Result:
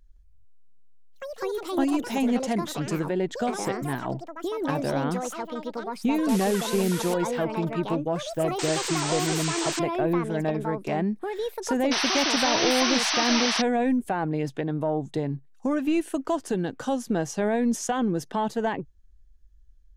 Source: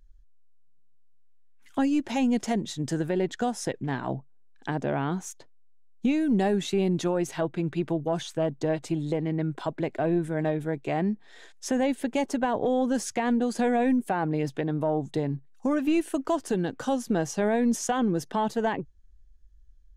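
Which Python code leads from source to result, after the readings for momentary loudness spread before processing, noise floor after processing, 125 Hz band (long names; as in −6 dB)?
7 LU, −52 dBFS, 0.0 dB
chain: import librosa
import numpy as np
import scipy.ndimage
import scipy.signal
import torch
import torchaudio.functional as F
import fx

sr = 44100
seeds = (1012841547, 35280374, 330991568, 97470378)

y = fx.spec_paint(x, sr, seeds[0], shape='noise', start_s=11.91, length_s=1.71, low_hz=620.0, high_hz=6200.0, level_db=-26.0)
y = fx.echo_pitch(y, sr, ms=165, semitones=6, count=2, db_per_echo=-6.0)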